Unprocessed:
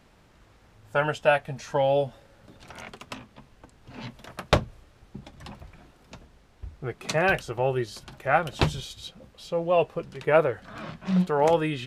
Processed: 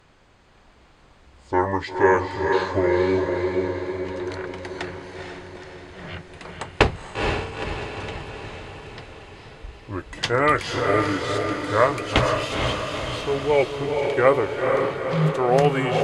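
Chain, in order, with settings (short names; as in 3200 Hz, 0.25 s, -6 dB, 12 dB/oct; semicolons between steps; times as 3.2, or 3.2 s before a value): speed glide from 61% -> 87%; tilt shelf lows -3 dB, about 790 Hz; notch 5600 Hz, Q 14; diffused feedback echo 0.469 s, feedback 61%, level -3.5 dB; gain +3.5 dB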